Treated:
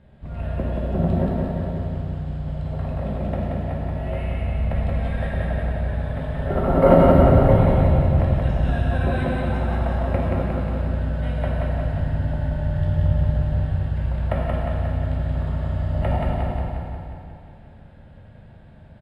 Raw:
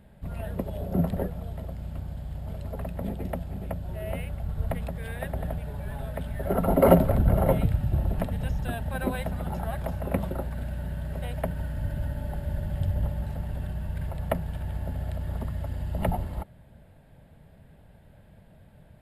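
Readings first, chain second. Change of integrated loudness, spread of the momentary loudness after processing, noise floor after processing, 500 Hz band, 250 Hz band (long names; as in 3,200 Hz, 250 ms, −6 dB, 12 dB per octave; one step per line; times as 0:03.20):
+7.5 dB, 12 LU, −45 dBFS, +7.0 dB, +7.0 dB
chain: high-frequency loss of the air 110 metres
repeating echo 179 ms, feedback 59%, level −3 dB
dense smooth reverb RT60 2.2 s, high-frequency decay 0.85×, DRR −3.5 dB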